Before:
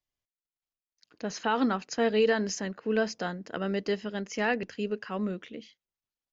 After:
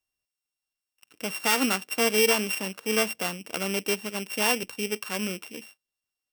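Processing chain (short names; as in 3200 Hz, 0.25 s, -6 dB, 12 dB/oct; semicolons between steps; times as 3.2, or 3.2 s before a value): sample sorter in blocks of 16 samples; tilt +1.5 dB/oct; gain +2.5 dB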